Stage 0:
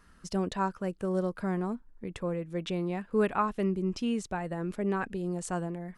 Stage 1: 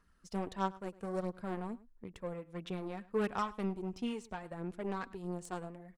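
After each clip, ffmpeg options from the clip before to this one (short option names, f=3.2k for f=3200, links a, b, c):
-filter_complex "[0:a]aeval=exprs='0.168*(cos(1*acos(clip(val(0)/0.168,-1,1)))-cos(1*PI/2))+0.0133*(cos(7*acos(clip(val(0)/0.168,-1,1)))-cos(7*PI/2))':c=same,aphaser=in_gain=1:out_gain=1:delay=4.4:decay=0.38:speed=1.5:type=sinusoidal,asplit=2[a][b];[b]adelay=105,volume=-20dB,highshelf=f=4k:g=-2.36[c];[a][c]amix=inputs=2:normalize=0,volume=-6.5dB"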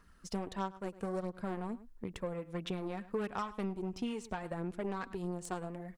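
-af "acompressor=threshold=-42dB:ratio=4,volume=7.5dB"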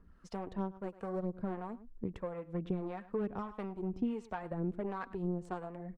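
-filter_complex "[0:a]lowpass=f=1k:p=1,acrossover=split=560[a][b];[a]aeval=exprs='val(0)*(1-0.7/2+0.7/2*cos(2*PI*1.5*n/s))':c=same[c];[b]aeval=exprs='val(0)*(1-0.7/2-0.7/2*cos(2*PI*1.5*n/s))':c=same[d];[c][d]amix=inputs=2:normalize=0,volume=4.5dB"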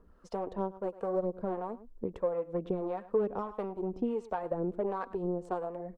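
-af "equalizer=f=125:t=o:w=1:g=-6,equalizer=f=500:t=o:w=1:g=10,equalizer=f=1k:t=o:w=1:g=4,equalizer=f=2k:t=o:w=1:g=-4"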